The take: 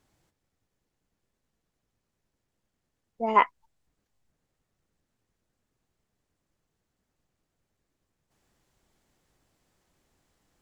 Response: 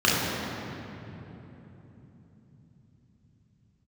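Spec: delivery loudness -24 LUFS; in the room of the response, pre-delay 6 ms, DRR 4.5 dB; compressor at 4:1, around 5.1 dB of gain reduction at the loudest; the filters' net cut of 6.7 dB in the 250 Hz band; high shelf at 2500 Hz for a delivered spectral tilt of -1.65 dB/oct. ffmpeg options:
-filter_complex "[0:a]equalizer=f=250:t=o:g=-8,highshelf=f=2.5k:g=5,acompressor=threshold=-19dB:ratio=4,asplit=2[a][b];[1:a]atrim=start_sample=2205,adelay=6[c];[b][c]afir=irnorm=-1:irlink=0,volume=-24dB[d];[a][d]amix=inputs=2:normalize=0,volume=7dB"

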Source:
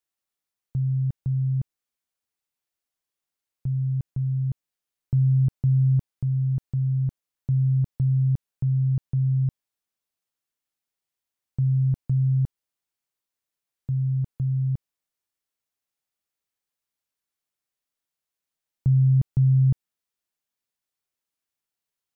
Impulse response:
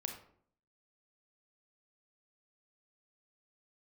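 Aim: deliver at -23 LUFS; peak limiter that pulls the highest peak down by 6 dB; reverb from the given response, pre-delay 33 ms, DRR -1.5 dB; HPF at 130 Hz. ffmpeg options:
-filter_complex "[0:a]highpass=130,alimiter=limit=-23dB:level=0:latency=1,asplit=2[a][b];[1:a]atrim=start_sample=2205,adelay=33[c];[b][c]afir=irnorm=-1:irlink=0,volume=2.5dB[d];[a][d]amix=inputs=2:normalize=0,volume=6.5dB"

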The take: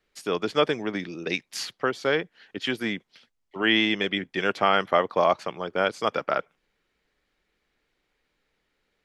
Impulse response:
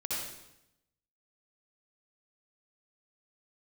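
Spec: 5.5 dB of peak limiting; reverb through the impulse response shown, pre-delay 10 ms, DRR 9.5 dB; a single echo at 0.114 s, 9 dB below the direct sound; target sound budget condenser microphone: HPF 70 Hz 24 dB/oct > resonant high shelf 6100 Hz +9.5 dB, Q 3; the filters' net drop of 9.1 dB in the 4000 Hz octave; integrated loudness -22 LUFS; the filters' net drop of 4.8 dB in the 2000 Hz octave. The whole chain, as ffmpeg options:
-filter_complex "[0:a]equalizer=f=2k:t=o:g=-3.5,equalizer=f=4k:t=o:g=-6.5,alimiter=limit=-13.5dB:level=0:latency=1,aecho=1:1:114:0.355,asplit=2[a][b];[1:a]atrim=start_sample=2205,adelay=10[c];[b][c]afir=irnorm=-1:irlink=0,volume=-14dB[d];[a][d]amix=inputs=2:normalize=0,highpass=f=70:w=0.5412,highpass=f=70:w=1.3066,highshelf=f=6.1k:t=q:w=3:g=9.5,volume=6dB"

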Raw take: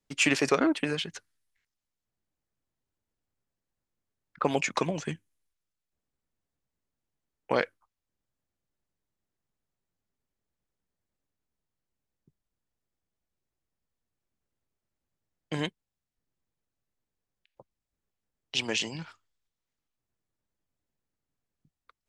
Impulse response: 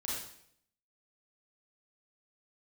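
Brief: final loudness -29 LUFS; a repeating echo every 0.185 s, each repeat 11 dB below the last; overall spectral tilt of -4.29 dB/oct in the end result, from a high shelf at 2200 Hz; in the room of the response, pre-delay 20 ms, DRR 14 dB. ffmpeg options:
-filter_complex "[0:a]highshelf=f=2.2k:g=-4,aecho=1:1:185|370|555:0.282|0.0789|0.0221,asplit=2[a][b];[1:a]atrim=start_sample=2205,adelay=20[c];[b][c]afir=irnorm=-1:irlink=0,volume=-16dB[d];[a][d]amix=inputs=2:normalize=0,volume=1.5dB"

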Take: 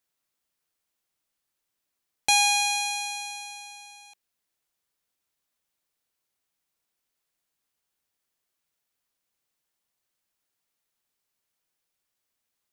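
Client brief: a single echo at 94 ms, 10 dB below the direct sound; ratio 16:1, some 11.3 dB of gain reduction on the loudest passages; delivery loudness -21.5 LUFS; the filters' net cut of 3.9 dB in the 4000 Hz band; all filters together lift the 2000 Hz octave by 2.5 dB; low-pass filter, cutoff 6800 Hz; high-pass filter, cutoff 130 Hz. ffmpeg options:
-af "highpass=130,lowpass=6.8k,equalizer=f=2k:t=o:g=6,equalizer=f=4k:t=o:g=-5.5,acompressor=threshold=-28dB:ratio=16,aecho=1:1:94:0.316,volume=10dB"

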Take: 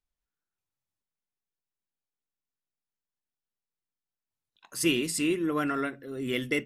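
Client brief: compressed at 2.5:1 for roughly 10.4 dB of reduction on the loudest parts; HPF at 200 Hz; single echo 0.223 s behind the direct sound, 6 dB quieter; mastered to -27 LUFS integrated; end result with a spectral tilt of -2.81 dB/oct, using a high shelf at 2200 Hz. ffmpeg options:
-af "highpass=200,highshelf=f=2.2k:g=8.5,acompressor=threshold=-35dB:ratio=2.5,aecho=1:1:223:0.501,volume=6.5dB"

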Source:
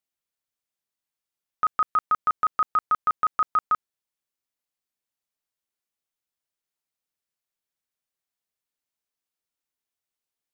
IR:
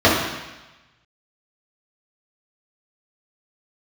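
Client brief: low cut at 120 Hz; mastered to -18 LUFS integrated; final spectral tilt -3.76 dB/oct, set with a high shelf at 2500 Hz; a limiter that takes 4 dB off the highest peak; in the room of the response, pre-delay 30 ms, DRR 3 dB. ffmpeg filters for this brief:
-filter_complex "[0:a]highpass=120,highshelf=f=2.5k:g=6,alimiter=limit=-18dB:level=0:latency=1,asplit=2[a][b];[1:a]atrim=start_sample=2205,adelay=30[c];[b][c]afir=irnorm=-1:irlink=0,volume=-29dB[d];[a][d]amix=inputs=2:normalize=0,volume=9.5dB"

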